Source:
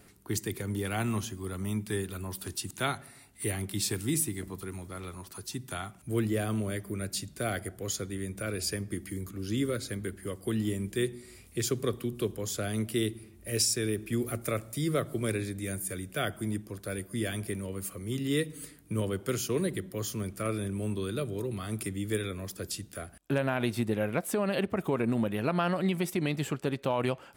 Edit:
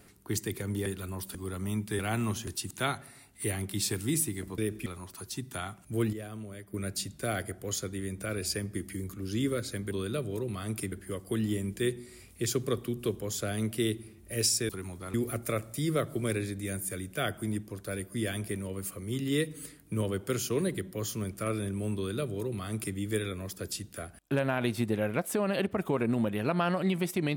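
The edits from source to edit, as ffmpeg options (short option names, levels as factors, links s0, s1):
-filter_complex "[0:a]asplit=13[s0][s1][s2][s3][s4][s5][s6][s7][s8][s9][s10][s11][s12];[s0]atrim=end=0.862[s13];[s1]atrim=start=1.978:end=2.472[s14];[s2]atrim=start=1.338:end=1.982[s15];[s3]atrim=start=0.858:end=1.342[s16];[s4]atrim=start=2.468:end=4.582[s17];[s5]atrim=start=13.848:end=14.132[s18];[s6]atrim=start=5.028:end=6.302[s19];[s7]atrim=start=6.298:end=6.912,asetpts=PTS-STARTPTS,volume=0.299[s20];[s8]atrim=start=6.908:end=10.082[s21];[s9]atrim=start=20.938:end=21.952[s22];[s10]atrim=start=10.078:end=13.852[s23];[s11]atrim=start=4.578:end=5.032[s24];[s12]atrim=start=14.128[s25];[s13][s14]acrossfade=d=0.004:c1=hsin:c2=hsin[s26];[s26][s15]acrossfade=d=0.004:c1=hsin:c2=hsin[s27];[s27][s16]acrossfade=d=0.004:c1=hsin:c2=hsin[s28];[s28][s17]acrossfade=d=0.004:c1=hsin:c2=hsin[s29];[s29][s18]acrossfade=d=0.004:c1=hsin:c2=hsin[s30];[s30][s19]acrossfade=d=0.004:c1=hsin:c2=hsin[s31];[s31][s20]acrossfade=d=0.004:c1=hsin:c2=hsin[s32];[s32][s21]acrossfade=d=0.004:c1=hsin:c2=hsin[s33];[s33][s22]acrossfade=d=0.004:c1=hsin:c2=hsin[s34];[s34][s23]acrossfade=d=0.004:c1=hsin:c2=hsin[s35];[s35][s24]acrossfade=d=0.004:c1=hsin:c2=hsin[s36];[s36][s25]acrossfade=d=0.004:c1=hsin:c2=hsin"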